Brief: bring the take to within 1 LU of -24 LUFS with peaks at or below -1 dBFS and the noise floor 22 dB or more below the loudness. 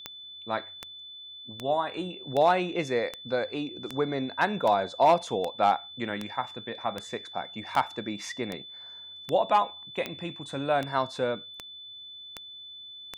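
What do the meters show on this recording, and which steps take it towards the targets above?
clicks 18; steady tone 3500 Hz; tone level -42 dBFS; loudness -29.0 LUFS; peak -10.5 dBFS; loudness target -24.0 LUFS
-> de-click; notch 3500 Hz, Q 30; gain +5 dB

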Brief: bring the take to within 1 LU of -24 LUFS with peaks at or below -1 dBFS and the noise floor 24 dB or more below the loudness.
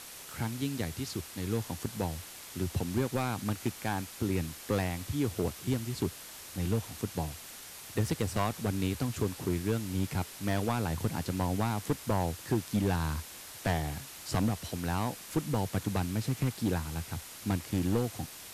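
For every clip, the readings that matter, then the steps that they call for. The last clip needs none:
clipped 1.2%; flat tops at -22.0 dBFS; noise floor -47 dBFS; noise floor target -58 dBFS; loudness -33.5 LUFS; peak -22.0 dBFS; loudness target -24.0 LUFS
-> clip repair -22 dBFS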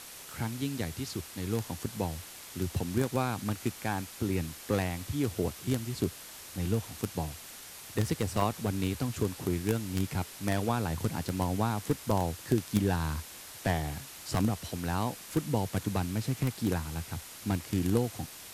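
clipped 0.0%; noise floor -47 dBFS; noise floor target -57 dBFS
-> denoiser 10 dB, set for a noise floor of -47 dBFS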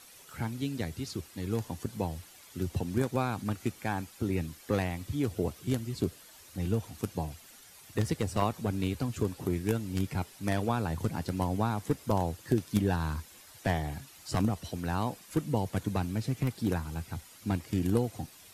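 noise floor -54 dBFS; noise floor target -57 dBFS
-> denoiser 6 dB, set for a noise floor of -54 dBFS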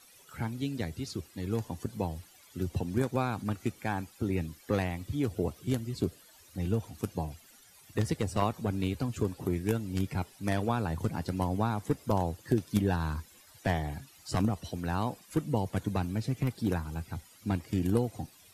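noise floor -58 dBFS; loudness -33.0 LUFS; peak -13.0 dBFS; loudness target -24.0 LUFS
-> gain +9 dB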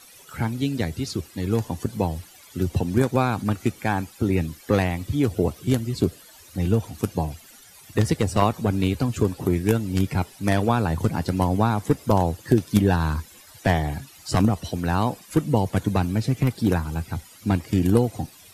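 loudness -24.0 LUFS; peak -4.0 dBFS; noise floor -49 dBFS

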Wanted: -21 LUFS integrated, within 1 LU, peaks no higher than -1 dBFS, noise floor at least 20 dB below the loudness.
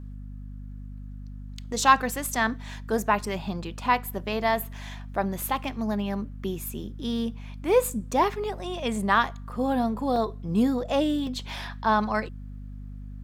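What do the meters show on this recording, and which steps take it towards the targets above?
dropouts 3; longest dropout 1.4 ms; hum 50 Hz; harmonics up to 250 Hz; hum level -36 dBFS; loudness -27.0 LUFS; peak -5.5 dBFS; loudness target -21.0 LUFS
-> interpolate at 5.42/10.16/11.27, 1.4 ms; notches 50/100/150/200/250 Hz; gain +6 dB; limiter -1 dBFS

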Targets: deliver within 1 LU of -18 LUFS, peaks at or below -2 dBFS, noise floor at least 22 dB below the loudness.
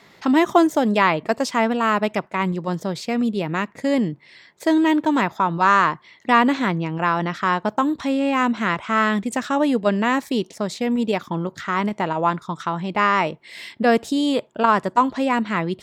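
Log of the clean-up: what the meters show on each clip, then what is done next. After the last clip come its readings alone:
loudness -21.0 LUFS; peak -2.5 dBFS; loudness target -18.0 LUFS
-> gain +3 dB; limiter -2 dBFS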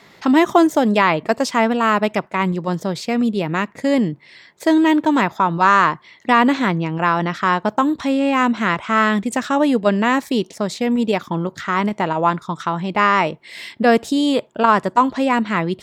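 loudness -18.0 LUFS; peak -2.0 dBFS; noise floor -48 dBFS

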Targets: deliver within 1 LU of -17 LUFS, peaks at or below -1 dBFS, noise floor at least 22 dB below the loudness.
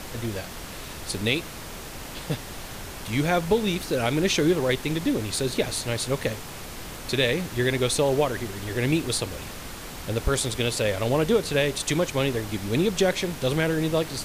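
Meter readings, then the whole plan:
noise floor -38 dBFS; noise floor target -48 dBFS; loudness -25.5 LUFS; peak -8.5 dBFS; loudness target -17.0 LUFS
-> noise print and reduce 10 dB; gain +8.5 dB; limiter -1 dBFS

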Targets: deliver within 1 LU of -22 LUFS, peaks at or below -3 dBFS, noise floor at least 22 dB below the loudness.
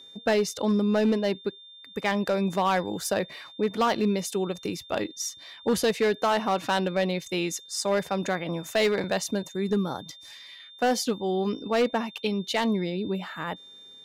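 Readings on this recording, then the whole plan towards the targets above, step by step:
clipped 1.2%; flat tops at -17.5 dBFS; steady tone 3600 Hz; tone level -46 dBFS; loudness -27.0 LUFS; peak -17.5 dBFS; loudness target -22.0 LUFS
-> clip repair -17.5 dBFS; notch 3600 Hz, Q 30; gain +5 dB

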